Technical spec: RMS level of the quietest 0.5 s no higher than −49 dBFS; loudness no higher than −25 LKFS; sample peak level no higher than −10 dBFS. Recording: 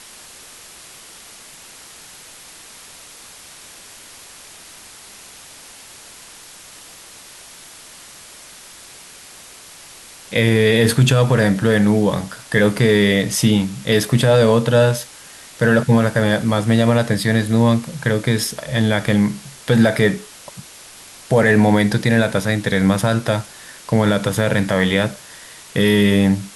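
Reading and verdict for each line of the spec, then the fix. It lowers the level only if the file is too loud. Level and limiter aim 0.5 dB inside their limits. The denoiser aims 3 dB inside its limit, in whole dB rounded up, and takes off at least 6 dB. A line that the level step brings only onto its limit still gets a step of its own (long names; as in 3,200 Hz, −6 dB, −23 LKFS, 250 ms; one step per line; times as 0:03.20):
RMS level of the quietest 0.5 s −41 dBFS: out of spec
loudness −16.5 LKFS: out of spec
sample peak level −3.5 dBFS: out of spec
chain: level −9 dB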